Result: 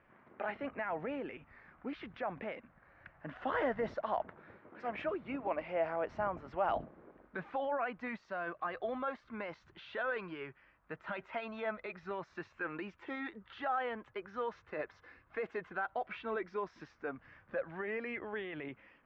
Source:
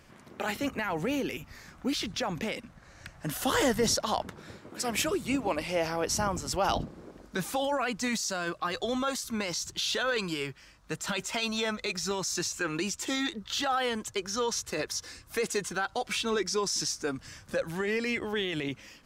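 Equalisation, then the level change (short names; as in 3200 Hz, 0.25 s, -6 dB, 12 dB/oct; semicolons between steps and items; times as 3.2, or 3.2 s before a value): LPF 2100 Hz 24 dB/oct; low shelf 310 Hz -10 dB; dynamic EQ 650 Hz, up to +7 dB, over -50 dBFS, Q 4.7; -5.5 dB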